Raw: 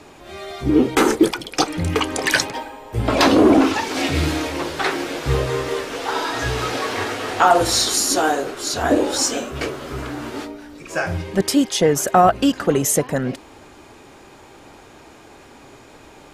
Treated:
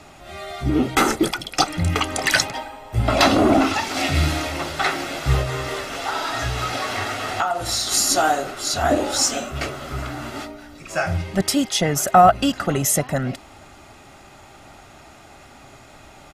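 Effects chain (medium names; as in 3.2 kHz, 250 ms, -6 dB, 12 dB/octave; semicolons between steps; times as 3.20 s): peaking EQ 480 Hz -12 dB 0.26 oct; comb 1.5 ms, depth 43%; 5.41–7.92 s: compression 6:1, threshold -20 dBFS, peak gain reduction 12.5 dB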